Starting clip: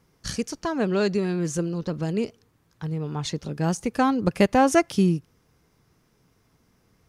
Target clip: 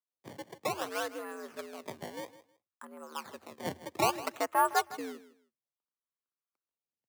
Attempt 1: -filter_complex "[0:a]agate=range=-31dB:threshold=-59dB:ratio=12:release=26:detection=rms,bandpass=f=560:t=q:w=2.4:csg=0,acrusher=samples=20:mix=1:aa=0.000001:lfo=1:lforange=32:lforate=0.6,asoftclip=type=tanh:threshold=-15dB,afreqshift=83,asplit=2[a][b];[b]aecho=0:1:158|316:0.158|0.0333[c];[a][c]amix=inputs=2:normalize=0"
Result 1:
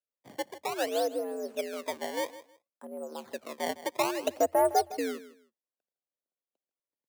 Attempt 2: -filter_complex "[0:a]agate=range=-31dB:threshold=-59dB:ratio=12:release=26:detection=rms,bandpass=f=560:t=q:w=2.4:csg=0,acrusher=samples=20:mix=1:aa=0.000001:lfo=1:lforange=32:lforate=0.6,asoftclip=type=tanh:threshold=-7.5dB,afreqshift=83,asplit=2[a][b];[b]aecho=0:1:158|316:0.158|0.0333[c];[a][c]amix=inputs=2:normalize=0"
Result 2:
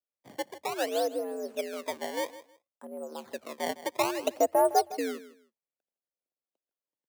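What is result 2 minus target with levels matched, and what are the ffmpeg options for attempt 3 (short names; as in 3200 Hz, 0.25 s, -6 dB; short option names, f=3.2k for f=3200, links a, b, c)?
500 Hz band +4.5 dB
-filter_complex "[0:a]agate=range=-31dB:threshold=-59dB:ratio=12:release=26:detection=rms,bandpass=f=1.1k:t=q:w=2.4:csg=0,acrusher=samples=20:mix=1:aa=0.000001:lfo=1:lforange=32:lforate=0.6,asoftclip=type=tanh:threshold=-7.5dB,afreqshift=83,asplit=2[a][b];[b]aecho=0:1:158|316:0.158|0.0333[c];[a][c]amix=inputs=2:normalize=0"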